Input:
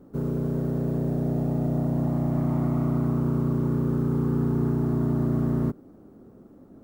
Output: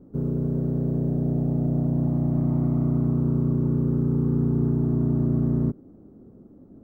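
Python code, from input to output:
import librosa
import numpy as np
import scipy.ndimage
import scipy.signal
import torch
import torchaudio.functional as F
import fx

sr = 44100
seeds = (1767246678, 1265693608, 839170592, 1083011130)

y = fx.tilt_shelf(x, sr, db=8.0, hz=760.0)
y = y * 10.0 ** (-5.0 / 20.0)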